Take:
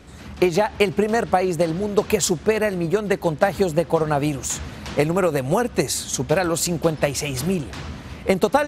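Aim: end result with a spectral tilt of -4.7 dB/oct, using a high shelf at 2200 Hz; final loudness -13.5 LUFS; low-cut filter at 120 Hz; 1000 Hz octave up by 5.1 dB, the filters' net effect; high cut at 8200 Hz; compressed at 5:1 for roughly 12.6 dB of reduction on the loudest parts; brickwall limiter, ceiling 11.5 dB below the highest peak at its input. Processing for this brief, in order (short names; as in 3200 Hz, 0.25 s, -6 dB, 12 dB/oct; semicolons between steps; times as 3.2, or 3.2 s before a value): HPF 120 Hz; LPF 8200 Hz; bell 1000 Hz +8 dB; high shelf 2200 Hz -4.5 dB; compressor 5:1, threshold -24 dBFS; gain +18.5 dB; limiter -2 dBFS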